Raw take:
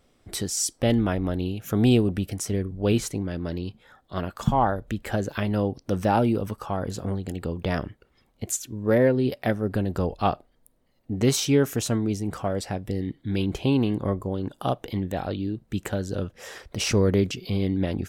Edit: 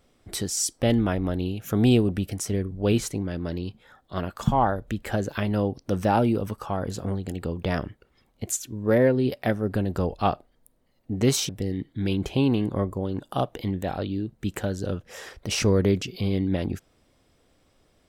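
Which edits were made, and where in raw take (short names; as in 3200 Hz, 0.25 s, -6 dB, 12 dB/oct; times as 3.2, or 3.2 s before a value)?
11.49–12.78 cut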